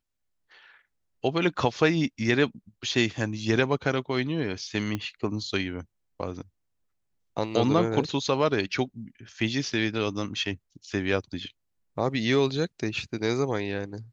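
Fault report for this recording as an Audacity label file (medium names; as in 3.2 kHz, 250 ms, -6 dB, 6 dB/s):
4.950000	4.950000	pop -16 dBFS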